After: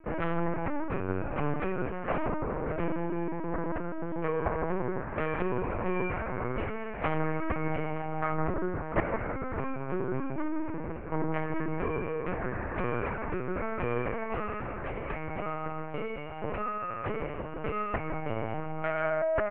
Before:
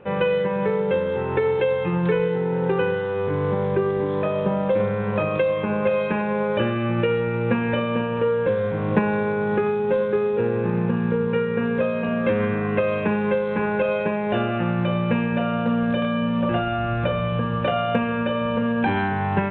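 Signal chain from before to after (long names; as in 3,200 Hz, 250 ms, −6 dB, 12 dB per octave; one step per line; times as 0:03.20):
comb filter 6.4 ms, depth 93%
harmonic generator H 3 −7 dB, 6 −29 dB, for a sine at −3 dBFS
delay with a band-pass on its return 163 ms, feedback 39%, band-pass 930 Hz, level −6 dB
single-sideband voice off tune −150 Hz 380–2,500 Hz
linear-prediction vocoder at 8 kHz pitch kept
level +2 dB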